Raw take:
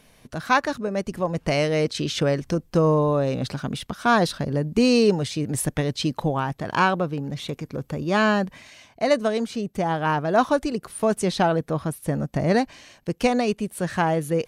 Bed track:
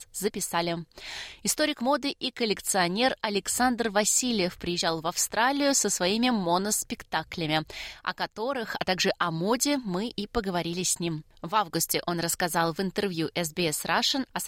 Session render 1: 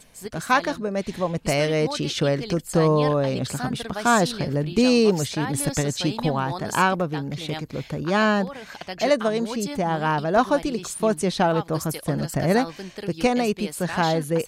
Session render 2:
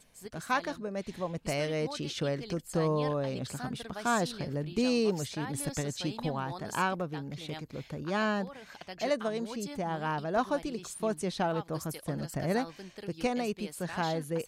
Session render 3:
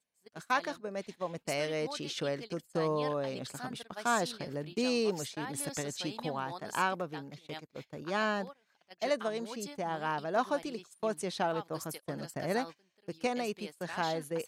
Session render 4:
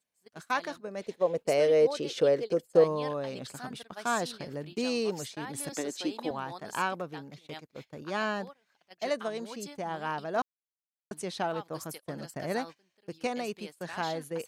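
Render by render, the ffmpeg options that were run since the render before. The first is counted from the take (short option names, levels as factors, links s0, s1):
-filter_complex "[1:a]volume=0.422[s0];[0:a][s0]amix=inputs=2:normalize=0"
-af "volume=0.316"
-af "agate=range=0.0794:threshold=0.0112:ratio=16:detection=peak,highpass=f=320:p=1"
-filter_complex "[0:a]asettb=1/sr,asplit=3[s0][s1][s2];[s0]atrim=end=1.014[s3];[s1]atrim=start=1.01:end=2.84,asetpts=PTS-STARTPTS,afade=t=in:d=0.004:c=qsin,afade=t=out:st=1.826:d=0.004:c=qsin,equalizer=f=480:w=1.7:g=14.5[s4];[s2]atrim=start=2.836[s5];[s3][s4]acrossfade=d=0.004:c1=hsin:c2=qsin[s6];[s6][s5]acrossfade=d=0.004:c1=qsin:c2=hsin,asettb=1/sr,asplit=3[s7][s8][s9];[s7]atrim=end=5.724[s10];[s8]atrim=start=5.72:end=6.31,asetpts=PTS-STARTPTS,afade=t=in:d=0.004:c=qsin,afade=t=out:st=0.586:d=0.004:c=qsin,highpass=f=310:t=q:w=2.2[s11];[s9]atrim=start=6.306[s12];[s10][s11]acrossfade=d=0.004:c1=hsin:c2=qsin[s13];[s13][s12]acrossfade=d=0.004:c1=qsin:c2=hsin,asplit=3[s14][s15][s16];[s14]atrim=end=10.42,asetpts=PTS-STARTPTS,afade=t=out:st=10.416:d=0.004:c=hsin[s17];[s15]atrim=start=10.42:end=11.11,asetpts=PTS-STARTPTS,volume=0[s18];[s16]atrim=start=11.11,asetpts=PTS-STARTPTS,afade=t=in:d=0.004:c=hsin[s19];[s17][s18][s19]concat=n=3:v=0:a=1"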